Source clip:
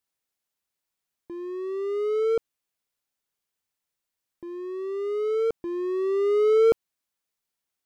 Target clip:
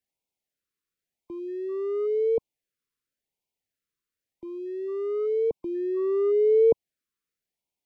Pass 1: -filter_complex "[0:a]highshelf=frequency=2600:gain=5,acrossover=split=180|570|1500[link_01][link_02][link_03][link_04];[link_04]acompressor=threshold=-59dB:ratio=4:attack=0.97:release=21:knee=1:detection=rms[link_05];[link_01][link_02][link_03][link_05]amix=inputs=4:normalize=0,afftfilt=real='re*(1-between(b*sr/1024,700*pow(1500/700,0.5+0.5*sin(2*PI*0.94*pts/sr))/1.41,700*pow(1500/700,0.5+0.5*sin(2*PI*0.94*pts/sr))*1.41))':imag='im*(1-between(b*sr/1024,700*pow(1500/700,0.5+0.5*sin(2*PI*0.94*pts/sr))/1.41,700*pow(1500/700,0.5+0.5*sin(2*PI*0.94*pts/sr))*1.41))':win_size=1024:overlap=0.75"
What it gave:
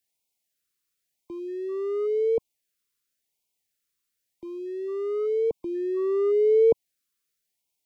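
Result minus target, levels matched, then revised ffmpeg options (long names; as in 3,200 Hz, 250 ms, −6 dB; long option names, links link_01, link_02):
4,000 Hz band +4.0 dB
-filter_complex "[0:a]highshelf=frequency=2600:gain=-6.5,acrossover=split=180|570|1500[link_01][link_02][link_03][link_04];[link_04]acompressor=threshold=-59dB:ratio=4:attack=0.97:release=21:knee=1:detection=rms[link_05];[link_01][link_02][link_03][link_05]amix=inputs=4:normalize=0,afftfilt=real='re*(1-between(b*sr/1024,700*pow(1500/700,0.5+0.5*sin(2*PI*0.94*pts/sr))/1.41,700*pow(1500/700,0.5+0.5*sin(2*PI*0.94*pts/sr))*1.41))':imag='im*(1-between(b*sr/1024,700*pow(1500/700,0.5+0.5*sin(2*PI*0.94*pts/sr))/1.41,700*pow(1500/700,0.5+0.5*sin(2*PI*0.94*pts/sr))*1.41))':win_size=1024:overlap=0.75"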